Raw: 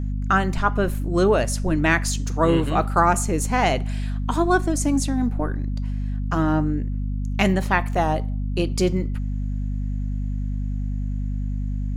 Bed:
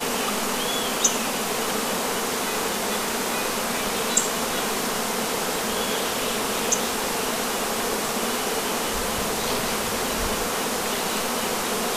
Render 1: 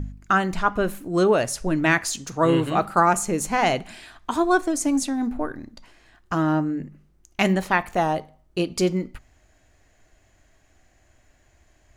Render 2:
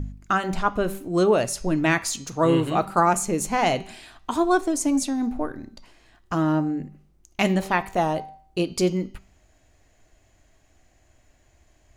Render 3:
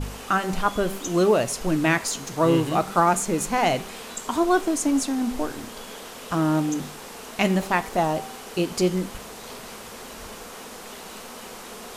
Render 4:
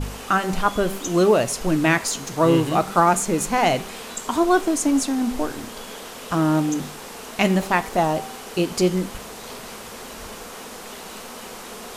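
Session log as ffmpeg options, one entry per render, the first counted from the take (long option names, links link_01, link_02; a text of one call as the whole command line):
ffmpeg -i in.wav -af "bandreject=frequency=50:width_type=h:width=4,bandreject=frequency=100:width_type=h:width=4,bandreject=frequency=150:width_type=h:width=4,bandreject=frequency=200:width_type=h:width=4,bandreject=frequency=250:width_type=h:width=4" out.wav
ffmpeg -i in.wav -af "equalizer=frequency=1600:width_type=o:width=0.77:gain=-4,bandreject=frequency=193.4:width_type=h:width=4,bandreject=frequency=386.8:width_type=h:width=4,bandreject=frequency=580.2:width_type=h:width=4,bandreject=frequency=773.6:width_type=h:width=4,bandreject=frequency=967:width_type=h:width=4,bandreject=frequency=1160.4:width_type=h:width=4,bandreject=frequency=1353.8:width_type=h:width=4,bandreject=frequency=1547.2:width_type=h:width=4,bandreject=frequency=1740.6:width_type=h:width=4,bandreject=frequency=1934:width_type=h:width=4,bandreject=frequency=2127.4:width_type=h:width=4,bandreject=frequency=2320.8:width_type=h:width=4,bandreject=frequency=2514.2:width_type=h:width=4,bandreject=frequency=2707.6:width_type=h:width=4,bandreject=frequency=2901:width_type=h:width=4,bandreject=frequency=3094.4:width_type=h:width=4,bandreject=frequency=3287.8:width_type=h:width=4,bandreject=frequency=3481.2:width_type=h:width=4,bandreject=frequency=3674.6:width_type=h:width=4,bandreject=frequency=3868:width_type=h:width=4,bandreject=frequency=4061.4:width_type=h:width=4,bandreject=frequency=4254.8:width_type=h:width=4,bandreject=frequency=4448.2:width_type=h:width=4,bandreject=frequency=4641.6:width_type=h:width=4,bandreject=frequency=4835:width_type=h:width=4,bandreject=frequency=5028.4:width_type=h:width=4,bandreject=frequency=5221.8:width_type=h:width=4,bandreject=frequency=5415.2:width_type=h:width=4,bandreject=frequency=5608.6:width_type=h:width=4,bandreject=frequency=5802:width_type=h:width=4,bandreject=frequency=5995.4:width_type=h:width=4,bandreject=frequency=6188.8:width_type=h:width=4,bandreject=frequency=6382.2:width_type=h:width=4,bandreject=frequency=6575.6:width_type=h:width=4" out.wav
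ffmpeg -i in.wav -i bed.wav -filter_complex "[1:a]volume=-14dB[link_01];[0:a][link_01]amix=inputs=2:normalize=0" out.wav
ffmpeg -i in.wav -af "volume=2.5dB" out.wav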